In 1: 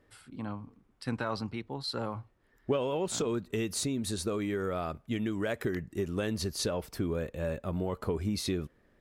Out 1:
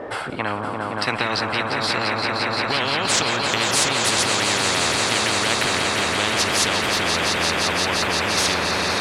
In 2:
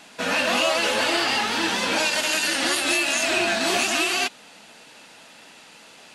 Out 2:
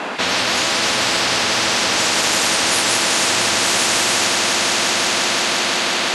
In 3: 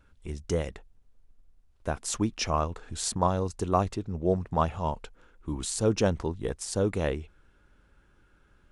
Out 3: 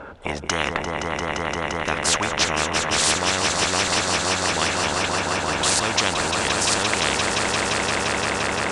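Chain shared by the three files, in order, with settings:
band-pass filter 680 Hz, Q 1.7; echo with a slow build-up 173 ms, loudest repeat 5, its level -10 dB; spectrum-flattening compressor 10:1; peak normalisation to -3 dBFS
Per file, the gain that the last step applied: +18.5 dB, +10.5 dB, +9.5 dB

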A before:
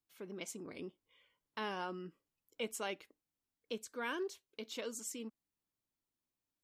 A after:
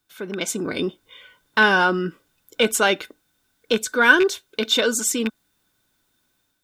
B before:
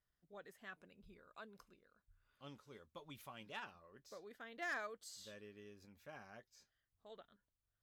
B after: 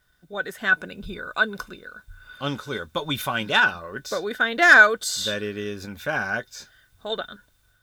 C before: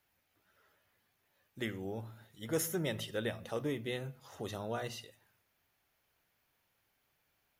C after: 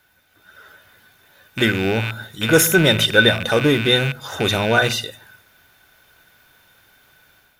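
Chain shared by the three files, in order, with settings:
rattle on loud lows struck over -47 dBFS, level -35 dBFS; level rider gain up to 6.5 dB; in parallel at -6 dB: saturation -32 dBFS; on the sum: small resonant body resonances 1.5/3.6 kHz, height 17 dB, ringing for 55 ms; peak normalisation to -1.5 dBFS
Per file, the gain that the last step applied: +12.0 dB, +17.0 dB, +11.5 dB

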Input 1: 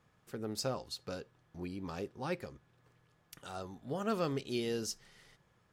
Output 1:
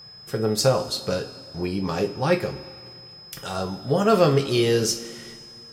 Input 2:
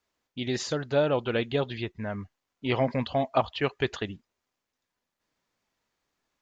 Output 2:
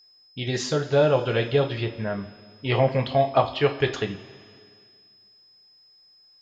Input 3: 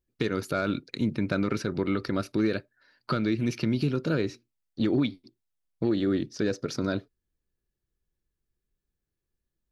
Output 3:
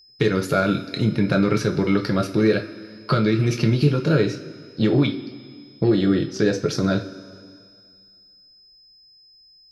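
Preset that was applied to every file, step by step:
two-slope reverb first 0.27 s, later 2.2 s, from -18 dB, DRR 2.5 dB; whistle 5.1 kHz -56 dBFS; peak normalisation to -6 dBFS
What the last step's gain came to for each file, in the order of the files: +13.5 dB, +2.5 dB, +6.0 dB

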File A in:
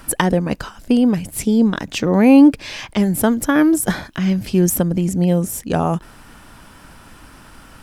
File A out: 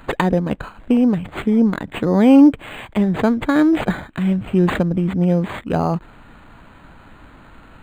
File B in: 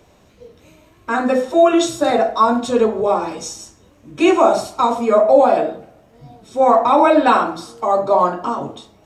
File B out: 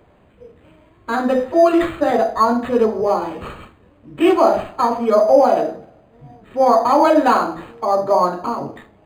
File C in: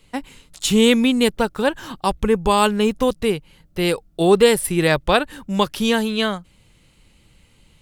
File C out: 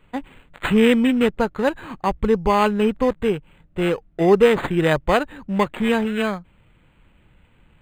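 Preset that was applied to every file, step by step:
decimation joined by straight lines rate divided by 8×; peak normalisation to -1.5 dBFS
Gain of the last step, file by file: -0.5 dB, -0.5 dB, -0.5 dB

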